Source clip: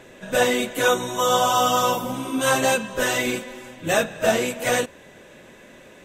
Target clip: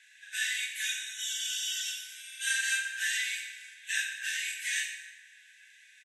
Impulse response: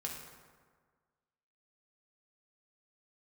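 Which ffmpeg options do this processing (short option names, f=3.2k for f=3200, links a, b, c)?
-filter_complex "[0:a]asplit=2[a][b];[1:a]atrim=start_sample=2205,adelay=28[c];[b][c]afir=irnorm=-1:irlink=0,volume=0dB[d];[a][d]amix=inputs=2:normalize=0,afftfilt=real='re*between(b*sr/4096,1500,12000)':imag='im*between(b*sr/4096,1500,12000)':win_size=4096:overlap=0.75,asplit=5[e][f][g][h][i];[f]adelay=88,afreqshift=60,volume=-14dB[j];[g]adelay=176,afreqshift=120,volume=-20.9dB[k];[h]adelay=264,afreqshift=180,volume=-27.9dB[l];[i]adelay=352,afreqshift=240,volume=-34.8dB[m];[e][j][k][l][m]amix=inputs=5:normalize=0,volume=-8dB"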